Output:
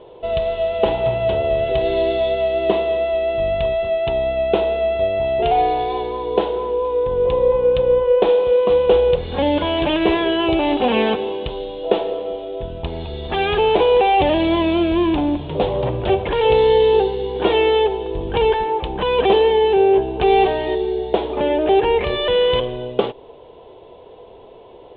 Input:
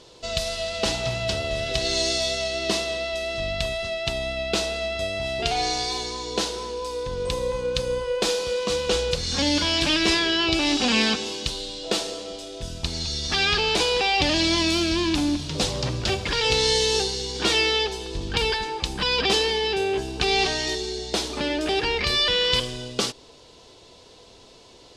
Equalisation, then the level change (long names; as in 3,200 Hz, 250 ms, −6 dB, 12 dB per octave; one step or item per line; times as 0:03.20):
Butterworth low-pass 3,500 Hz 72 dB per octave
low-shelf EQ 470 Hz +5.5 dB
flat-topped bell 600 Hz +11 dB
−2.0 dB